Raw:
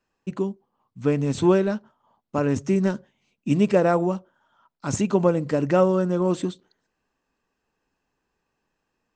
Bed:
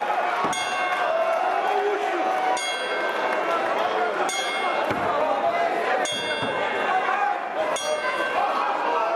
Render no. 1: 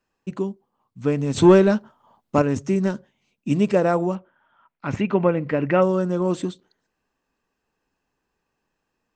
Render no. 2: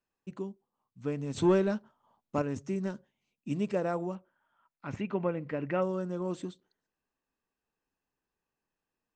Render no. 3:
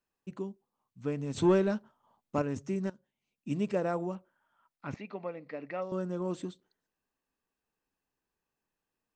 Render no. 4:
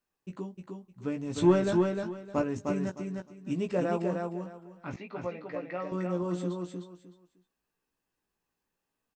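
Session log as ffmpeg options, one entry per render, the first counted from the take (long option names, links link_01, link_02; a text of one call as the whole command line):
ffmpeg -i in.wav -filter_complex "[0:a]asettb=1/sr,asplit=3[link_01][link_02][link_03];[link_01]atrim=end=1.364[link_04];[link_02]atrim=start=1.36:end=2.42,asetpts=PTS-STARTPTS,afade=type=in:duration=0.004:curve=qsin,afade=type=out:start_time=1.056:duration=0.004:curve=qsin,acontrast=76[link_05];[link_03]atrim=start=2.416[link_06];[link_04][link_05]acrossfade=duration=0.004:curve1=hsin:curve2=qsin[link_07];[link_07][link_06]acrossfade=duration=0.004:curve1=qsin:curve2=hsin,asettb=1/sr,asplit=3[link_08][link_09][link_10];[link_08]atrim=end=4.154[link_11];[link_09]atrim=start=4.15:end=5.82,asetpts=PTS-STARTPTS,afade=type=in:duration=0.004:curve=qsin,afade=type=out:start_time=1.666:duration=0.004:curve=qsin,lowpass=frequency=2300:width_type=q:width=2.4[link_12];[link_10]atrim=start=5.816[link_13];[link_11][link_12]acrossfade=duration=0.004:curve1=hsin:curve2=qsin[link_14];[link_14][link_13]acrossfade=duration=0.004:curve1=qsin:curve2=hsin" out.wav
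ffmpeg -i in.wav -af "volume=-12dB" out.wav
ffmpeg -i in.wav -filter_complex "[0:a]asettb=1/sr,asplit=3[link_01][link_02][link_03];[link_01]atrim=end=4.944[link_04];[link_02]atrim=start=4.94:end=5.92,asetpts=PTS-STARTPTS,afade=type=in:duration=0.004:curve=qsin,afade=type=out:start_time=0.976:duration=0.004:curve=qsin,highpass=360,equalizer=frequency=360:width_type=q:width=4:gain=-9,equalizer=frequency=540:width_type=q:width=4:gain=-4,equalizer=frequency=970:width_type=q:width=4:gain=-8,equalizer=frequency=1500:width_type=q:width=4:gain=-10,equalizer=frequency=3000:width_type=q:width=4:gain=-9,equalizer=frequency=4400:width_type=q:width=4:gain=6,lowpass=frequency=5400:width=0.5412,lowpass=frequency=5400:width=1.3066[link_05];[link_03]atrim=start=5.916[link_06];[link_04][link_05]acrossfade=duration=0.004:curve1=hsin:curve2=qsin[link_07];[link_07][link_06]acrossfade=duration=0.004:curve1=qsin:curve2=hsin,asplit=2[link_08][link_09];[link_08]atrim=end=2.9,asetpts=PTS-STARTPTS,afade=type=out:start_time=2.896:duration=0.004:curve=hsin:silence=0.125893[link_10];[link_09]atrim=start=2.9,asetpts=PTS-STARTPTS,afade=type=in:duration=0.63:silence=0.125893[link_11];[link_10][link_11]concat=n=2:v=0:a=1" out.wav
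ffmpeg -i in.wav -filter_complex "[0:a]asplit=2[link_01][link_02];[link_02]adelay=17,volume=-5dB[link_03];[link_01][link_03]amix=inputs=2:normalize=0,asplit=2[link_04][link_05];[link_05]aecho=0:1:306|612|918:0.631|0.139|0.0305[link_06];[link_04][link_06]amix=inputs=2:normalize=0" out.wav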